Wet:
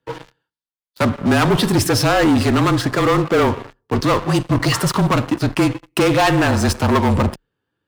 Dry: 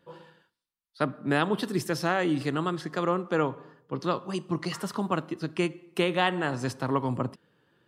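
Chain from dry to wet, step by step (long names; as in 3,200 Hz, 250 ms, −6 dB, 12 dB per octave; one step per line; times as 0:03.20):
leveller curve on the samples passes 5
frequency shifter −31 Hz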